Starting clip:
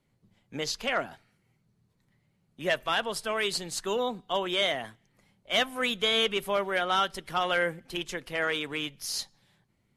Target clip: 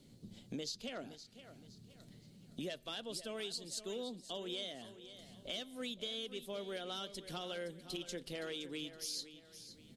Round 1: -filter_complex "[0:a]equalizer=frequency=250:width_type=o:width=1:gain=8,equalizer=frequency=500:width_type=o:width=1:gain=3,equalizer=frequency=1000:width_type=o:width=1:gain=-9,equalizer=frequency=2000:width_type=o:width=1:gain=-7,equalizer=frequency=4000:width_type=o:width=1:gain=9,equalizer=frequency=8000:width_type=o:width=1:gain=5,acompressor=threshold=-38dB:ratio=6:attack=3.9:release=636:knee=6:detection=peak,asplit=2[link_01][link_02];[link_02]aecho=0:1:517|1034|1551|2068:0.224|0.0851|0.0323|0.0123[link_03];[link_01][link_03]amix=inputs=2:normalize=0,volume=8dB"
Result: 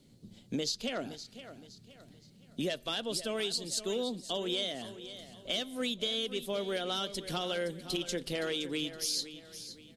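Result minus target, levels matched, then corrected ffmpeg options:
downward compressor: peak gain reduction −8.5 dB
-filter_complex "[0:a]equalizer=frequency=250:width_type=o:width=1:gain=8,equalizer=frequency=500:width_type=o:width=1:gain=3,equalizer=frequency=1000:width_type=o:width=1:gain=-9,equalizer=frequency=2000:width_type=o:width=1:gain=-7,equalizer=frequency=4000:width_type=o:width=1:gain=9,equalizer=frequency=8000:width_type=o:width=1:gain=5,acompressor=threshold=-48.5dB:ratio=6:attack=3.9:release=636:knee=6:detection=peak,asplit=2[link_01][link_02];[link_02]aecho=0:1:517|1034|1551|2068:0.224|0.0851|0.0323|0.0123[link_03];[link_01][link_03]amix=inputs=2:normalize=0,volume=8dB"

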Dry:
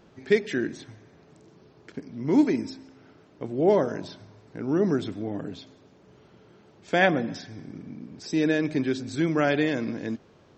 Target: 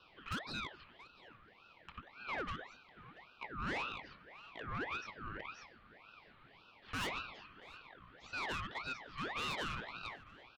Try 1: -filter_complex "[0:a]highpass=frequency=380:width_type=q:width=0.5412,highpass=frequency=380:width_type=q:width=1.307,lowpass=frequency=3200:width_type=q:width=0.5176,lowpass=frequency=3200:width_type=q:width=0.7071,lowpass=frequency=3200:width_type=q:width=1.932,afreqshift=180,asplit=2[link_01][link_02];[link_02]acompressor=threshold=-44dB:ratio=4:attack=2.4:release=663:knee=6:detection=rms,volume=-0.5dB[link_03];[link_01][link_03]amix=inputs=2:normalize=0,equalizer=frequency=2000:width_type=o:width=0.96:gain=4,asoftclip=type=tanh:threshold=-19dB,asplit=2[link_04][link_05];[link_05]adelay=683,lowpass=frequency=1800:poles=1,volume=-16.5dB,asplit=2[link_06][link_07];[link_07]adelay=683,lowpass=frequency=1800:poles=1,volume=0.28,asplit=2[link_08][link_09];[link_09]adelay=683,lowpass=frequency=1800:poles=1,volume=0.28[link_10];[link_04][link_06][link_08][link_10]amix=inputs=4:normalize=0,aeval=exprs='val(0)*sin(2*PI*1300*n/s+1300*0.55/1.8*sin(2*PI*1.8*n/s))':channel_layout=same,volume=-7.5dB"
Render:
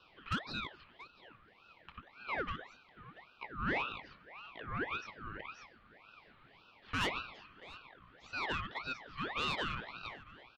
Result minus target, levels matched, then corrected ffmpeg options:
downward compressor: peak gain reduction +5 dB; soft clipping: distortion −5 dB
-filter_complex "[0:a]highpass=frequency=380:width_type=q:width=0.5412,highpass=frequency=380:width_type=q:width=1.307,lowpass=frequency=3200:width_type=q:width=0.5176,lowpass=frequency=3200:width_type=q:width=0.7071,lowpass=frequency=3200:width_type=q:width=1.932,afreqshift=180,asplit=2[link_01][link_02];[link_02]acompressor=threshold=-37.5dB:ratio=4:attack=2.4:release=663:knee=6:detection=rms,volume=-0.5dB[link_03];[link_01][link_03]amix=inputs=2:normalize=0,equalizer=frequency=2000:width_type=o:width=0.96:gain=4,asoftclip=type=tanh:threshold=-26dB,asplit=2[link_04][link_05];[link_05]adelay=683,lowpass=frequency=1800:poles=1,volume=-16.5dB,asplit=2[link_06][link_07];[link_07]adelay=683,lowpass=frequency=1800:poles=1,volume=0.28,asplit=2[link_08][link_09];[link_09]adelay=683,lowpass=frequency=1800:poles=1,volume=0.28[link_10];[link_04][link_06][link_08][link_10]amix=inputs=4:normalize=0,aeval=exprs='val(0)*sin(2*PI*1300*n/s+1300*0.55/1.8*sin(2*PI*1.8*n/s))':channel_layout=same,volume=-7.5dB"

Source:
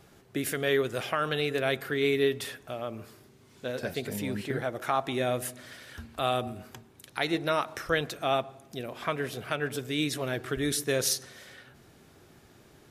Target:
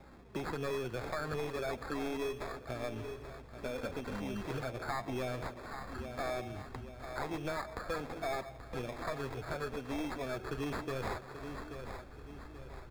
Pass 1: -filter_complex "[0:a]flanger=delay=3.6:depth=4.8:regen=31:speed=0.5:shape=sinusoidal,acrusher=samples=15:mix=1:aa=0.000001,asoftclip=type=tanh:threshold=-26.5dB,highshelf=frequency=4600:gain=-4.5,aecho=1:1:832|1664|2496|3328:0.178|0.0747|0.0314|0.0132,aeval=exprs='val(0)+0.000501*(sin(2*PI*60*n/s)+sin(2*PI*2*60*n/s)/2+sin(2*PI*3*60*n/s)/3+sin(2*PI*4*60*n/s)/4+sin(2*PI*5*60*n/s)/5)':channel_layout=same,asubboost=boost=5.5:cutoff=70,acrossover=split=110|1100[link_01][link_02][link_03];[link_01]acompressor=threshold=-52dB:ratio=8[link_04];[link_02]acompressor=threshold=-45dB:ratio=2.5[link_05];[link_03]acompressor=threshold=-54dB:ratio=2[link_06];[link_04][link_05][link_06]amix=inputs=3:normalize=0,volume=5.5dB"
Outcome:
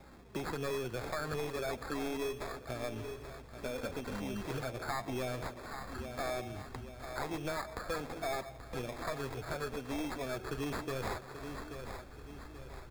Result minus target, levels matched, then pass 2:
8,000 Hz band +4.5 dB
-filter_complex "[0:a]flanger=delay=3.6:depth=4.8:regen=31:speed=0.5:shape=sinusoidal,acrusher=samples=15:mix=1:aa=0.000001,asoftclip=type=tanh:threshold=-26.5dB,highshelf=frequency=4600:gain=-12,aecho=1:1:832|1664|2496|3328:0.178|0.0747|0.0314|0.0132,aeval=exprs='val(0)+0.000501*(sin(2*PI*60*n/s)+sin(2*PI*2*60*n/s)/2+sin(2*PI*3*60*n/s)/3+sin(2*PI*4*60*n/s)/4+sin(2*PI*5*60*n/s)/5)':channel_layout=same,asubboost=boost=5.5:cutoff=70,acrossover=split=110|1100[link_01][link_02][link_03];[link_01]acompressor=threshold=-52dB:ratio=8[link_04];[link_02]acompressor=threshold=-45dB:ratio=2.5[link_05];[link_03]acompressor=threshold=-54dB:ratio=2[link_06];[link_04][link_05][link_06]amix=inputs=3:normalize=0,volume=5.5dB"

